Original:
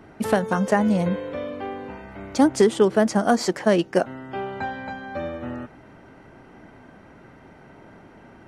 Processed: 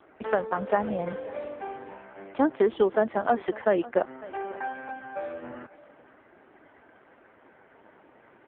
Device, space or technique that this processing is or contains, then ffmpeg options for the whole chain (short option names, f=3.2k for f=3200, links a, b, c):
satellite phone: -af "highpass=350,lowpass=3.2k,aecho=1:1:546:0.112,volume=-2dB" -ar 8000 -c:a libopencore_amrnb -b:a 5150